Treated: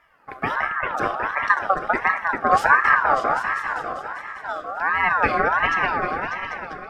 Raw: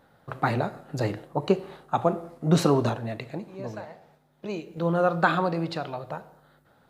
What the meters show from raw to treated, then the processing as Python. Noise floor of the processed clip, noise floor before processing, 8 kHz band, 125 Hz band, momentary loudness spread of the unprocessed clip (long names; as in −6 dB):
−40 dBFS, −62 dBFS, can't be measured, −11.5 dB, 15 LU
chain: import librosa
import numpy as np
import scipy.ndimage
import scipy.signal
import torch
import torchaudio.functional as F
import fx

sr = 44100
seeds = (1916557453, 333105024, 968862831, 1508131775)

p1 = fx.spec_quant(x, sr, step_db=15)
p2 = scipy.signal.sosfilt(scipy.signal.butter(2, 130.0, 'highpass', fs=sr, output='sos'), p1)
p3 = fx.low_shelf(p2, sr, hz=470.0, db=10.0)
p4 = p3 + fx.echo_opening(p3, sr, ms=198, hz=400, octaves=2, feedback_pct=70, wet_db=0, dry=0)
p5 = fx.ring_lfo(p4, sr, carrier_hz=1200.0, swing_pct=25, hz=1.4)
y = p5 * librosa.db_to_amplitude(-1.0)